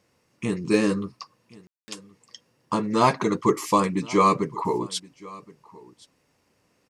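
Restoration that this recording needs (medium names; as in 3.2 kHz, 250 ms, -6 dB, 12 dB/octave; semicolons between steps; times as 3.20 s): clip repair -8.5 dBFS; room tone fill 1.67–1.88 s; inverse comb 1071 ms -22 dB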